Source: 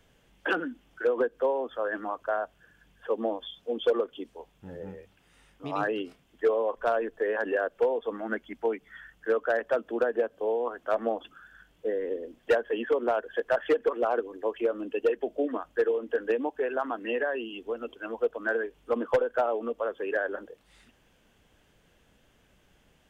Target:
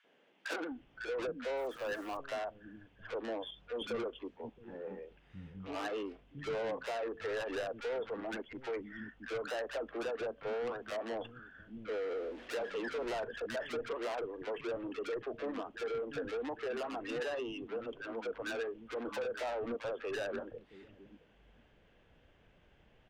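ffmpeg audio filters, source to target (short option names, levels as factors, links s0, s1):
-filter_complex "[0:a]asettb=1/sr,asplit=3[s0][s1][s2];[s0]atrim=end=11.884[s3];[s1]atrim=start=11.88:end=13.24,asetpts=PTS-STARTPTS,afade=t=in:d=0.004:c=qsin,afade=t=out:st=1.356:d=0.004:c=qsin,aeval=exprs='val(0)+0.5*0.00668*sgn(val(0))':c=same[s4];[s2]atrim=start=13.236[s5];[s3][s4]acrossfade=d=0.004:c1=hsin:c2=qsin[s6];[s6][s5]acrossfade=d=0.004:c1=qsin:c2=hsin,lowpass=2700,asettb=1/sr,asplit=3[s7][s8][s9];[s7]atrim=end=1.574[s10];[s8]atrim=start=1.57:end=2.17,asetpts=PTS-STARTPTS,afade=t=in:d=0.004:c=qsin,afade=t=out:st=0.596:d=0.004:c=qsin,acrusher=bits=8:mix=0:aa=0.5[s11];[s9]atrim=start=2.166[s12];[s10][s11]acrossfade=d=0.004:c1=hsin:c2=qsin[s13];[s13][s12]acrossfade=d=0.004:c1=qsin:c2=hsin,asoftclip=type=tanh:threshold=0.0211,acrossover=split=240|1200[s14][s15][s16];[s15]adelay=40[s17];[s14]adelay=710[s18];[s18][s17][s16]amix=inputs=3:normalize=0"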